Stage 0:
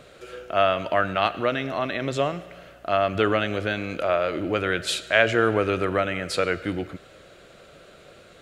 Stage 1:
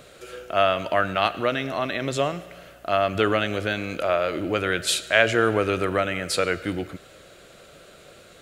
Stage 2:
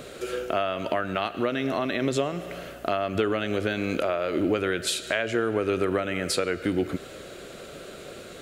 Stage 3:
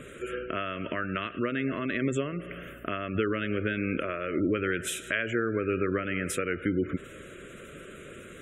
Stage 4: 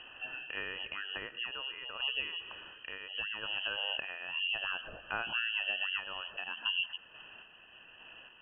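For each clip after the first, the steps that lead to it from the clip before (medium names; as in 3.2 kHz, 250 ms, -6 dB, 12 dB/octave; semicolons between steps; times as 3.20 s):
treble shelf 6.6 kHz +10.5 dB
compression 6:1, threshold -30 dBFS, peak gain reduction 16.5 dB; small resonant body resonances 250/380 Hz, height 6 dB, ringing for 25 ms; trim +5 dB
static phaser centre 1.9 kHz, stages 4; spectral gate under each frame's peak -30 dB strong
random-step tremolo; frequency inversion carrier 3.1 kHz; trim -6 dB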